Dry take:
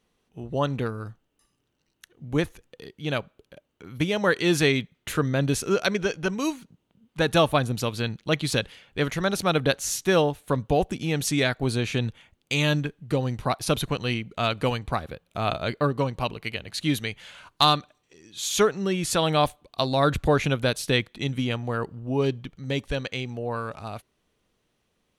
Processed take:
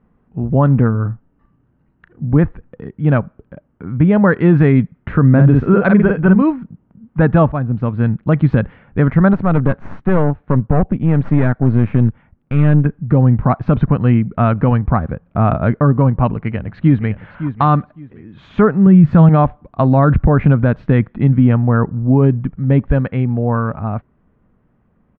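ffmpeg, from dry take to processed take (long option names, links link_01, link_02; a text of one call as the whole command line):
ffmpeg -i in.wav -filter_complex "[0:a]asettb=1/sr,asplit=3[link_01][link_02][link_03];[link_01]atrim=end=0.914[link_04];[link_02]atrim=start=0.91:end=2.27,asetpts=PTS-STARTPTS,afade=type=in:duration=0.004:curve=qsin,afade=type=out:start_time=1.356:duration=0.004:curve=qsin,asplit=2[link_05][link_06];[link_06]adelay=35,volume=-11dB[link_07];[link_05][link_07]amix=inputs=2:normalize=0,atrim=end_sample=59976[link_08];[link_03]atrim=start=2.266[link_09];[link_04][link_08]acrossfade=duration=0.004:curve1=hsin:curve2=qsin[link_10];[link_10][link_09]acrossfade=duration=0.004:curve1=qsin:curve2=hsin,asettb=1/sr,asplit=3[link_11][link_12][link_13];[link_11]atrim=end=5.294[link_14];[link_12]atrim=start=5.29:end=6.42,asetpts=PTS-STARTPTS,afade=type=in:duration=0.004:curve=qsin,afade=type=out:start_time=1.126:duration=0.004:curve=qsin,asplit=2[link_15][link_16];[link_16]adelay=49,volume=-4dB[link_17];[link_15][link_17]amix=inputs=2:normalize=0,atrim=end_sample=49833[link_18];[link_13]atrim=start=6.416[link_19];[link_14][link_18]acrossfade=duration=0.004:curve1=hsin:curve2=qsin[link_20];[link_20][link_19]acrossfade=duration=0.004:curve1=qsin:curve2=hsin,asettb=1/sr,asplit=3[link_21][link_22][link_23];[link_21]atrim=end=9.334[link_24];[link_22]atrim=start=9.33:end=12.86,asetpts=PTS-STARTPTS,afade=type=in:duration=0.004:curve=qsin,afade=type=out:start_time=3.526:duration=0.004:curve=qsin,aeval=exprs='(tanh(12.6*val(0)+0.8)-tanh(0.8))/12.6':channel_layout=same[link_25];[link_23]atrim=start=12.856[link_26];[link_24][link_25]acrossfade=duration=0.004:curve1=hsin:curve2=qsin[link_27];[link_27][link_26]acrossfade=duration=0.004:curve1=qsin:curve2=hsin,asplit=2[link_28][link_29];[link_29]afade=type=in:start_time=16.3:duration=0.01,afade=type=out:start_time=17.26:duration=0.01,aecho=0:1:560|1120:0.237137|0.0474275[link_30];[link_28][link_30]amix=inputs=2:normalize=0,asettb=1/sr,asplit=3[link_31][link_32][link_33];[link_31]atrim=end=18.864[link_34];[link_32]atrim=start=18.86:end=19.29,asetpts=PTS-STARTPTS,afade=type=in:duration=0.004:curve=qsin,afade=type=out:start_time=0.426:duration=0.004:curve=qsin,equalizer=frequency=150:width=1.5:gain=11[link_35];[link_33]atrim=start=19.286[link_36];[link_34][link_35]acrossfade=duration=0.004:curve1=hsin:curve2=qsin[link_37];[link_37][link_36]acrossfade=duration=0.004:curve1=qsin:curve2=hsin,asplit=2[link_38][link_39];[link_38]atrim=end=7.52,asetpts=PTS-STARTPTS,afade=type=out:start_time=7.516:duration=0.004:curve=hsin:silence=0.223872[link_40];[link_39]atrim=start=7.52,asetpts=PTS-STARTPTS,afade=type=in:duration=0.87:silence=0.223872[link_41];[link_40][link_41]concat=n=2:v=0:a=1,lowpass=frequency=1600:width=0.5412,lowpass=frequency=1600:width=1.3066,lowshelf=frequency=290:width_type=q:width=1.5:gain=6.5,alimiter=level_in=12dB:limit=-1dB:release=50:level=0:latency=1,volume=-1dB" out.wav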